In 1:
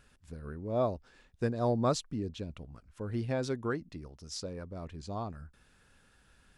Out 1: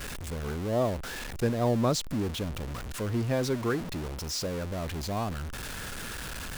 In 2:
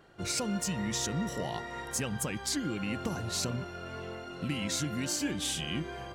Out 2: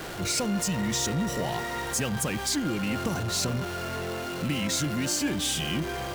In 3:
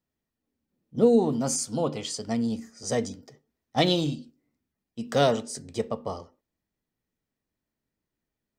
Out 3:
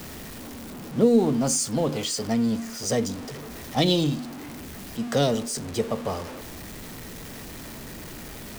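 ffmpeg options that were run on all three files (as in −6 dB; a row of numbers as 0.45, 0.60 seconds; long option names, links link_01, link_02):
-filter_complex "[0:a]aeval=exprs='val(0)+0.5*0.0188*sgn(val(0))':channel_layout=same,acrossover=split=430|3000[link_01][link_02][link_03];[link_02]acompressor=threshold=-28dB:ratio=6[link_04];[link_01][link_04][link_03]amix=inputs=3:normalize=0,volume=2.5dB"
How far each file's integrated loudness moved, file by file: +4.0, +5.5, +1.5 LU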